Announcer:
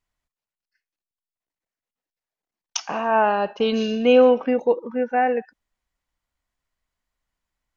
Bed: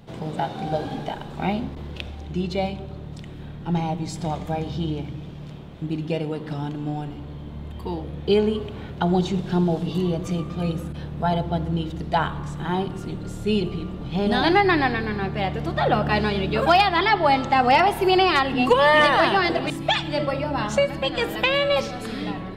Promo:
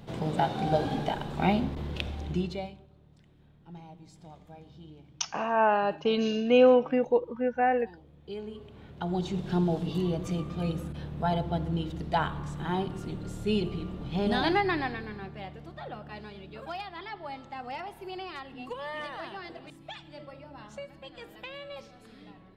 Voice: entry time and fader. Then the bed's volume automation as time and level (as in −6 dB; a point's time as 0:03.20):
2.45 s, −5.0 dB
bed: 0:02.31 −0.5 dB
0:02.89 −22.5 dB
0:08.17 −22.5 dB
0:09.50 −5.5 dB
0:14.29 −5.5 dB
0:16.00 −21.5 dB